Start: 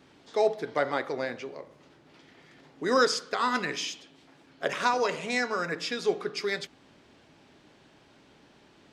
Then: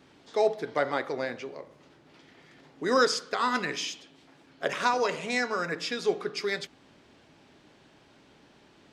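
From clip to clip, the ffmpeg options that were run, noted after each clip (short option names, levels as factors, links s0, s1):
-af anull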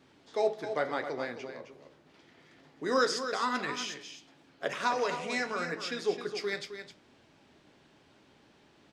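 -af "flanger=delay=7.5:depth=7.8:regen=-63:speed=0.84:shape=triangular,aecho=1:1:263:0.335"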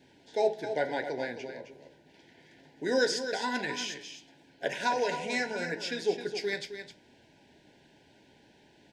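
-af "asuperstop=centerf=1200:order=20:qfactor=2.8,volume=1.19"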